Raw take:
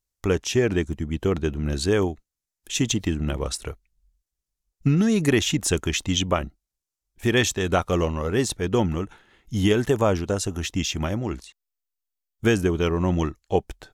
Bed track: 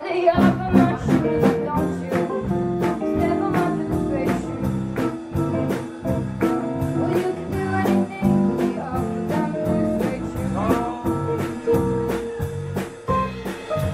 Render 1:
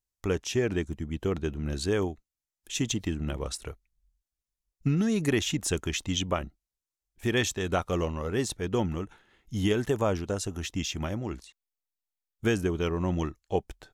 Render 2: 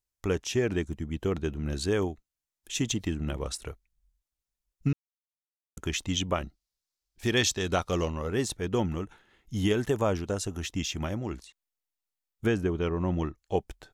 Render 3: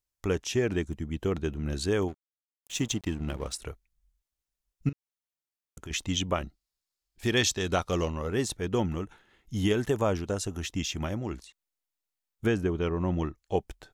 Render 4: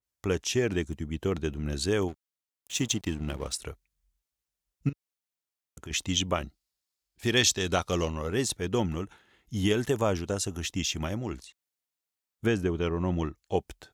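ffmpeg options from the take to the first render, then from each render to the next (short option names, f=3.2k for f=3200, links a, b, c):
-af "volume=-6dB"
-filter_complex "[0:a]asettb=1/sr,asplit=3[a][b][c];[a]atrim=end=6.384[d];[b]atrim=start=6.38:end=8.1,asetpts=PTS-STARTPTS,afade=t=in:d=0.004:c=qsin,afade=t=out:st=1.716:d=0.004:c=qsin,equalizer=f=4.7k:w=1.5:g=9[e];[c]atrim=start=8.096[f];[d][e]acrossfade=d=0.004:c1=hsin:c2=qsin[g];[g][f]acrossfade=d=0.004:c1=qsin:c2=hsin,asettb=1/sr,asplit=3[h][i][j];[h]atrim=end=12.464[k];[i]atrim=start=12.46:end=13.38,asetpts=PTS-STARTPTS,afade=t=in:d=0.004:c=qsin,afade=t=out:st=0.916:d=0.004:c=qsin,lowpass=f=2.4k:p=1[l];[j]atrim=start=13.376[m];[k][l]acrossfade=d=0.004:c1=hsin:c2=qsin[n];[n][m]acrossfade=d=0.004:c1=qsin:c2=hsin,asplit=3[o][p][q];[o]atrim=end=4.93,asetpts=PTS-STARTPTS,afade=t=out:st=4.926:d=0.004:c=hsin[r];[p]atrim=start=4.93:end=5.77,asetpts=PTS-STARTPTS,volume=0[s];[q]atrim=start=5.77,asetpts=PTS-STARTPTS,afade=t=in:d=0.004:c=hsin[t];[r][s][t]concat=n=3:v=0:a=1"
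-filter_complex "[0:a]asettb=1/sr,asplit=3[a][b][c];[a]atrim=end=2.084[d];[b]atrim=start=2.08:end=3.53,asetpts=PTS-STARTPTS,afade=t=in:d=0.004:c=qsin,afade=t=out:st=1.446:d=0.004:c=qsin,aeval=exprs='sgn(val(0))*max(abs(val(0))-0.00473,0)':c=same[e];[c]atrim=start=3.526[f];[d][e]acrossfade=d=0.004:c1=hsin:c2=qsin[g];[g][f]acrossfade=d=0.004:c1=qsin:c2=hsin,asettb=1/sr,asplit=3[h][i][j];[h]atrim=end=4.894[k];[i]atrim=start=4.89:end=5.91,asetpts=PTS-STARTPTS,afade=t=in:d=0.004:c=qsin,afade=t=out:st=1.016:d=0.004:c=qsin,acompressor=threshold=-42dB:ratio=2.5:attack=3.2:release=140:knee=1:detection=peak[l];[j]atrim=start=5.906[m];[k][l]acrossfade=d=0.004:c1=hsin:c2=qsin[n];[n][m]acrossfade=d=0.004:c1=qsin:c2=hsin,asettb=1/sr,asplit=3[o][p][q];[o]atrim=end=6.464[r];[p]atrim=start=6.46:end=7.31,asetpts=PTS-STARTPTS,afade=t=in:d=0.004:c=qsin,afade=t=out:st=0.846:d=0.004:c=qsin,bandreject=f=5.9k:w=16[s];[q]atrim=start=7.306[t];[r][s]acrossfade=d=0.004:c1=hsin:c2=qsin[u];[u][t]acrossfade=d=0.004:c1=qsin:c2=hsin"
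-af "highpass=49,adynamicequalizer=threshold=0.00708:dfrequency=2400:dqfactor=0.7:tfrequency=2400:tqfactor=0.7:attack=5:release=100:ratio=0.375:range=2:mode=boostabove:tftype=highshelf"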